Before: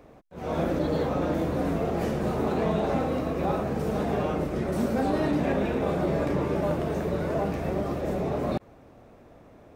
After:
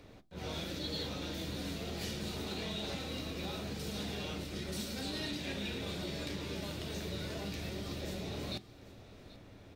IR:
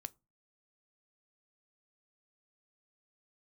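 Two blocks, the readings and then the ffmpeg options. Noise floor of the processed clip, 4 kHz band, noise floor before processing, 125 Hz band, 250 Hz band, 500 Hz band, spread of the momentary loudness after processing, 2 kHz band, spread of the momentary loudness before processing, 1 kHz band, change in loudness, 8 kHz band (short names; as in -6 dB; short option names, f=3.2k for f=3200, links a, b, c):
-55 dBFS, +6.0 dB, -52 dBFS, -11.5 dB, -13.5 dB, -16.5 dB, 7 LU, -6.5 dB, 4 LU, -17.0 dB, -12.0 dB, +2.5 dB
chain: -filter_complex "[0:a]equalizer=f=500:t=o:w=1:g=-7,equalizer=f=1k:t=o:w=1:g=-6,equalizer=f=4k:t=o:w=1:g=10,acrossover=split=2600[a][b];[a]acompressor=threshold=-38dB:ratio=6[c];[c][b]amix=inputs=2:normalize=0,aecho=1:1:784:0.112[d];[1:a]atrim=start_sample=2205,asetrate=39690,aresample=44100[e];[d][e]afir=irnorm=-1:irlink=0,volume=3.5dB"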